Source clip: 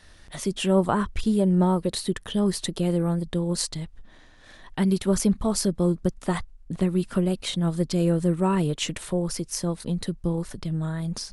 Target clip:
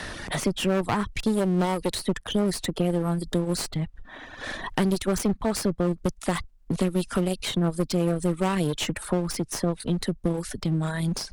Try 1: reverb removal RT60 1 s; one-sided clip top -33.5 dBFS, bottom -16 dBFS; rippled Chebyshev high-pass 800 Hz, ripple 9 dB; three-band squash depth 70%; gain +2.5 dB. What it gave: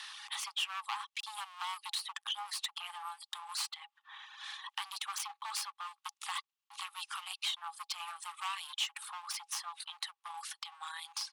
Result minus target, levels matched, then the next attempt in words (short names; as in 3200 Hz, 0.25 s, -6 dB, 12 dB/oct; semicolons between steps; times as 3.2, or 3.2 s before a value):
1000 Hz band +5.0 dB
reverb removal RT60 1 s; one-sided clip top -33.5 dBFS, bottom -16 dBFS; three-band squash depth 70%; gain +2.5 dB